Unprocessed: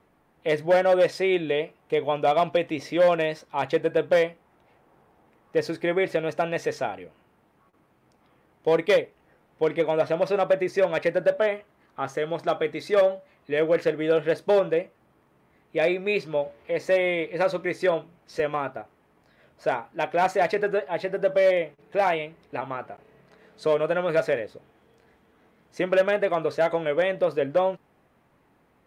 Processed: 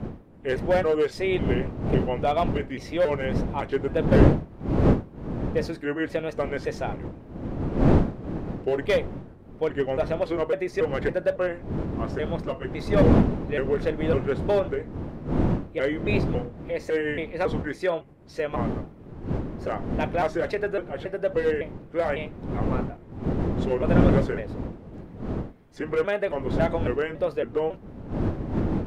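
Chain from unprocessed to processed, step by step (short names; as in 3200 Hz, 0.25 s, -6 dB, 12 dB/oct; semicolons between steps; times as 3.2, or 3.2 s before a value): trilling pitch shifter -3 st, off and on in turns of 0.277 s; wind noise 270 Hz -25 dBFS; gain -2.5 dB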